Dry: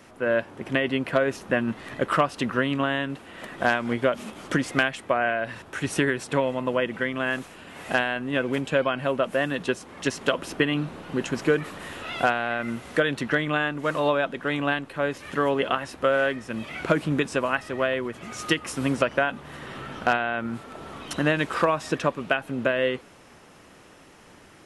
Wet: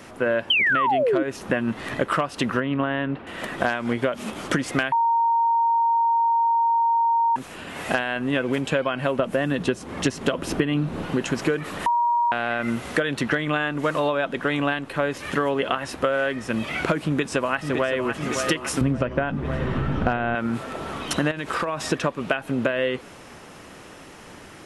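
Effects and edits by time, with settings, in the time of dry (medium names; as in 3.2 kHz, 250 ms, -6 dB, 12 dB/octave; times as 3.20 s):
0.50–1.23 s: painted sound fall 290–3200 Hz -16 dBFS
2.60–3.27 s: distance through air 390 m
4.92–7.36 s: bleep 926 Hz -15 dBFS
9.19–11.06 s: bass shelf 410 Hz +8 dB
11.86–12.32 s: bleep 949 Hz -19.5 dBFS
17.02–18.14 s: echo throw 560 ms, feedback 65%, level -10.5 dB
18.81–20.35 s: RIAA curve playback
21.31–21.84 s: compression 10:1, threshold -28 dBFS
whole clip: compression, threshold -27 dBFS; trim +7.5 dB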